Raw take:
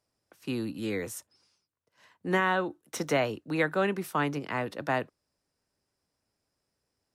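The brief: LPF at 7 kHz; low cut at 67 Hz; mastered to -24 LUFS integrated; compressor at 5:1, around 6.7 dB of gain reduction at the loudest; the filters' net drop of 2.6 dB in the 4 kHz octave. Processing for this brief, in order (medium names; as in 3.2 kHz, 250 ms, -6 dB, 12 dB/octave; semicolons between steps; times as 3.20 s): high-pass 67 Hz; low-pass 7 kHz; peaking EQ 4 kHz -3.5 dB; compression 5:1, threshold -29 dBFS; trim +11.5 dB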